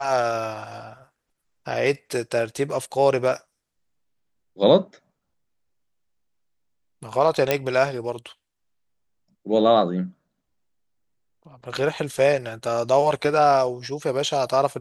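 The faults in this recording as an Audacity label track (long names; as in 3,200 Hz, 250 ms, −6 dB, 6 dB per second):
7.510000	7.510000	click −5 dBFS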